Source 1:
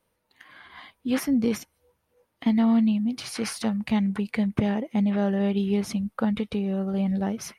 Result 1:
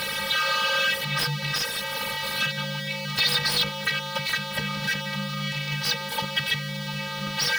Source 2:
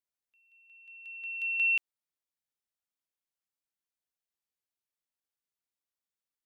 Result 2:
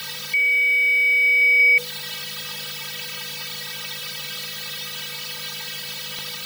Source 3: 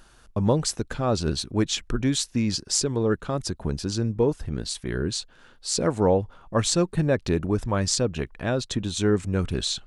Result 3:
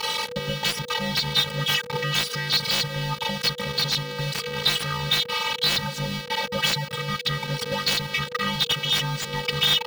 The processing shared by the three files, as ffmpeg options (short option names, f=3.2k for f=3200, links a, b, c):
-filter_complex "[0:a]aeval=exprs='val(0)+0.5*0.0708*sgn(val(0))':c=same,tiltshelf=f=830:g=-9.5,acrossover=split=3000|7100[a][b][c];[a]acompressor=threshold=-26dB:ratio=4[d];[b]acompressor=threshold=-22dB:ratio=4[e];[d][e][c]amix=inputs=3:normalize=0,asplit=2[f][g];[g]alimiter=limit=-11.5dB:level=0:latency=1:release=195,volume=0dB[h];[f][h]amix=inputs=2:normalize=0,afftfilt=real='hypot(re,im)*cos(PI*b)':imag='0':win_size=512:overlap=0.75,aeval=exprs='(tanh(1.41*val(0)+0.35)-tanh(0.35))/1.41':c=same,afreqshift=-490,aeval=exprs='(mod(2.51*val(0)+1,2)-1)/2.51':c=same,highshelf=f=5.6k:t=q:w=1.5:g=-11"